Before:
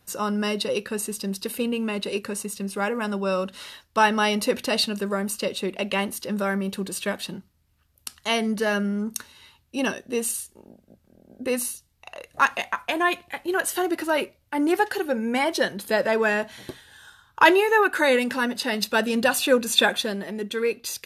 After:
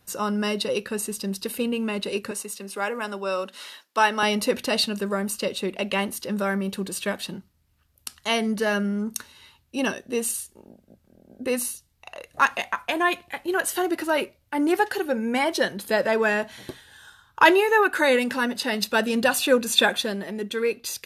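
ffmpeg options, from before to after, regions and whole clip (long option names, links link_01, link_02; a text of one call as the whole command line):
ffmpeg -i in.wav -filter_complex "[0:a]asettb=1/sr,asplit=3[link_01][link_02][link_03];[link_01]atrim=end=2.314[link_04];[link_02]atrim=start=2.31:end=4.23,asetpts=PTS-STARTPTS,afade=type=in:duration=0.004:curve=qsin,afade=type=out:start_time=1.916:duration=0.004:curve=qsin,highpass=frequency=220:width=0.5412,highpass=frequency=220:width=1.3066,lowshelf=frequency=370:gain=-6.5[link_05];[link_03]atrim=start=4.226[link_06];[link_04][link_05]acrossfade=duration=0.004:curve1=hsin:curve2=qsin[link_07];[link_07][link_06]acrossfade=duration=0.004:curve1=qsin:curve2=hsin" out.wav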